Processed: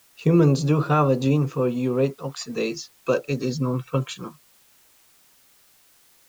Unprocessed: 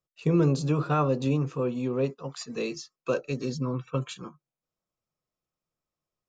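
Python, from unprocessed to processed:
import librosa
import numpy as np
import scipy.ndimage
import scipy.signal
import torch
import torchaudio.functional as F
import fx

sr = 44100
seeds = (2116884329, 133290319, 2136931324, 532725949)

y = fx.dmg_noise_colour(x, sr, seeds[0], colour='white', level_db=-63.0)
y = y * librosa.db_to_amplitude(5.5)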